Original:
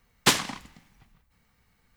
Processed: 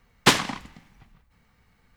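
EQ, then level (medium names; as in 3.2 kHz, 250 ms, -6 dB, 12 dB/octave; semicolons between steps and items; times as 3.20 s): treble shelf 5.1 kHz -8.5 dB; +5.0 dB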